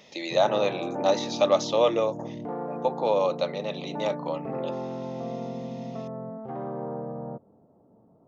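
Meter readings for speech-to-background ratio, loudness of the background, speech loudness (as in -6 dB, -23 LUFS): 8.5 dB, -35.0 LUFS, -26.5 LUFS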